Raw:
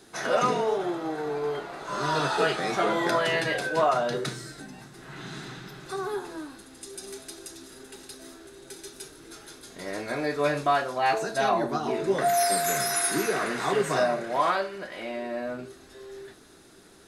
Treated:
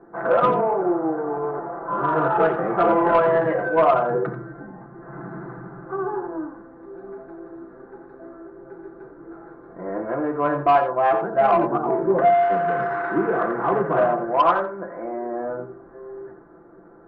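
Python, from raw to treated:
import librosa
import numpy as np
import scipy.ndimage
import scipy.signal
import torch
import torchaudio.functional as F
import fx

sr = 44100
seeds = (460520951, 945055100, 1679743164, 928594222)

y = fx.wiener(x, sr, points=15)
y = scipy.signal.sosfilt(scipy.signal.butter(4, 1400.0, 'lowpass', fs=sr, output='sos'), y)
y = fx.low_shelf(y, sr, hz=230.0, db=-7.5)
y = fx.hum_notches(y, sr, base_hz=50, count=3)
y = y + 0.57 * np.pad(y, (int(5.9 * sr / 1000.0), 0))[:len(y)]
y = 10.0 ** (-16.5 / 20.0) * np.tanh(y / 10.0 ** (-16.5 / 20.0))
y = y + 10.0 ** (-10.5 / 20.0) * np.pad(y, (int(87 * sr / 1000.0), 0))[:len(y)]
y = y * 10.0 ** (8.0 / 20.0)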